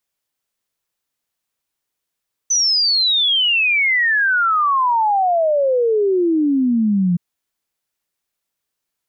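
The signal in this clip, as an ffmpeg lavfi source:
ffmpeg -f lavfi -i "aevalsrc='0.224*clip(min(t,4.67-t)/0.01,0,1)*sin(2*PI*6100*4.67/log(170/6100)*(exp(log(170/6100)*t/4.67)-1))':duration=4.67:sample_rate=44100" out.wav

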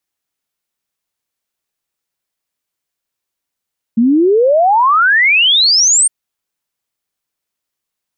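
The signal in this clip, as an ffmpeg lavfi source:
ffmpeg -f lavfi -i "aevalsrc='0.447*clip(min(t,2.11-t)/0.01,0,1)*sin(2*PI*220*2.11/log(9000/220)*(exp(log(9000/220)*t/2.11)-1))':duration=2.11:sample_rate=44100" out.wav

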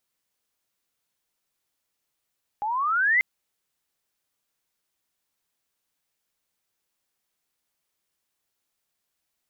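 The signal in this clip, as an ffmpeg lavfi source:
ffmpeg -f lavfi -i "aevalsrc='pow(10,(-25+8.5*t/0.59)/20)*sin(2*PI*810*0.59/log(2100/810)*(exp(log(2100/810)*t/0.59)-1))':duration=0.59:sample_rate=44100" out.wav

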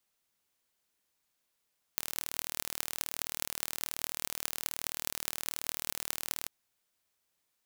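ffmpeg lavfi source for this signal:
ffmpeg -f lavfi -i "aevalsrc='0.708*eq(mod(n,1137),0)*(0.5+0.5*eq(mod(n,9096),0))':duration=4.51:sample_rate=44100" out.wav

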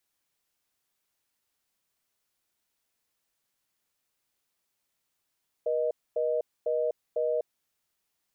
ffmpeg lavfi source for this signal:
ffmpeg -f lavfi -i "aevalsrc='0.0422*(sin(2*PI*480*t)+sin(2*PI*620*t))*clip(min(mod(t,0.5),0.25-mod(t,0.5))/0.005,0,1)':duration=1.89:sample_rate=44100" out.wav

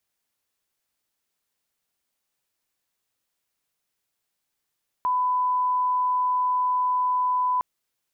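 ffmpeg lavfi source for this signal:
ffmpeg -f lavfi -i "sine=frequency=1000:duration=2.56:sample_rate=44100,volume=-1.94dB" out.wav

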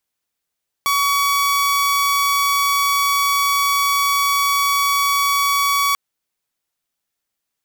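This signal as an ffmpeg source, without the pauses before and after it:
ffmpeg -f lavfi -i "aevalsrc='0.237*(2*mod(1130*t,1)-1)':duration=5.09:sample_rate=44100" out.wav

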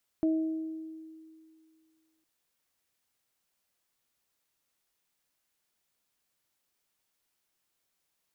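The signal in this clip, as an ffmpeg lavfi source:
ffmpeg -f lavfi -i "aevalsrc='0.075*pow(10,-3*t/2.26)*sin(2*PI*319*t)+0.02*pow(10,-3*t/1.04)*sin(2*PI*638*t)':duration=2.01:sample_rate=44100" out.wav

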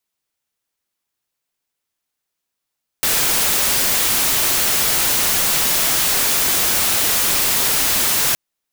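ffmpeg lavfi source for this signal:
ffmpeg -f lavfi -i "anoisesrc=color=white:amplitude=0.245:duration=5.32:sample_rate=44100:seed=1" out.wav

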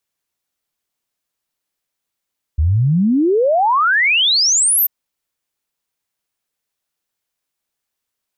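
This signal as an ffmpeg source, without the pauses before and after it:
ffmpeg -f lavfi -i "aevalsrc='0.282*clip(min(t,2.29-t)/0.01,0,1)*sin(2*PI*71*2.29/log(14000/71)*(exp(log(14000/71)*t/2.29)-1))':duration=2.29:sample_rate=44100" out.wav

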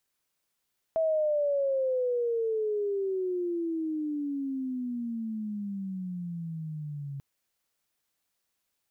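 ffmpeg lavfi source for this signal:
ffmpeg -f lavfi -i "aevalsrc='pow(10,(-23-11.5*t/6.24)/20)*sin(2*PI*654*6.24/(-27*log(2)/12)*(exp(-27*log(2)/12*t/6.24)-1))':duration=6.24:sample_rate=44100" out.wav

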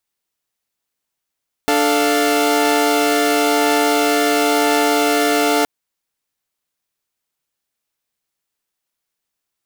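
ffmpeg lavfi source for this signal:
ffmpeg -f lavfi -i "aevalsrc='0.168*((2*mod(293.66*t,1)-1)+(2*mod(440*t,1)-1)+(2*mod(698.46*t,1)-1))':duration=3.97:sample_rate=44100" out.wav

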